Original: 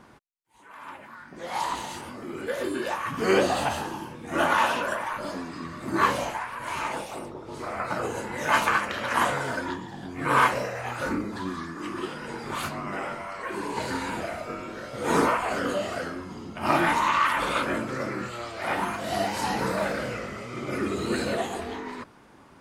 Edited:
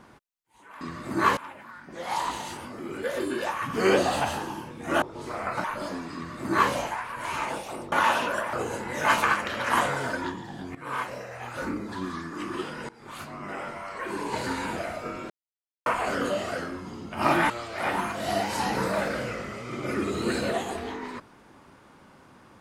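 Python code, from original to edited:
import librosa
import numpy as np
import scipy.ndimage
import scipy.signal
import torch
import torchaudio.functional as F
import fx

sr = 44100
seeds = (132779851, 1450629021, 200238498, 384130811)

y = fx.edit(x, sr, fx.swap(start_s=4.46, length_s=0.61, other_s=7.35, other_length_s=0.62),
    fx.duplicate(start_s=5.58, length_s=0.56, to_s=0.81),
    fx.fade_in_from(start_s=10.19, length_s=1.44, floor_db=-17.0),
    fx.fade_in_from(start_s=12.33, length_s=1.46, curve='qsin', floor_db=-20.0),
    fx.silence(start_s=14.74, length_s=0.56),
    fx.cut(start_s=16.94, length_s=1.4), tone=tone)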